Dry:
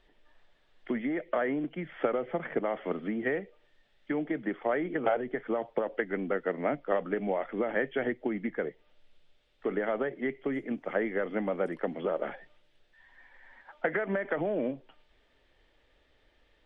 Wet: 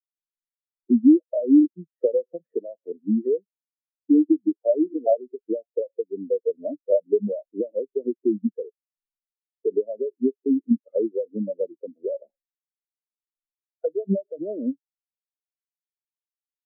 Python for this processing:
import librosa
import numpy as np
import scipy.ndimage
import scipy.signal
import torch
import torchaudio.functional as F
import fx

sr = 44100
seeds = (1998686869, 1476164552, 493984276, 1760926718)

y = fx.env_lowpass_down(x, sr, base_hz=620.0, full_db=-27.5)
y = fx.spectral_expand(y, sr, expansion=4.0)
y = y * 10.0 ** (8.5 / 20.0)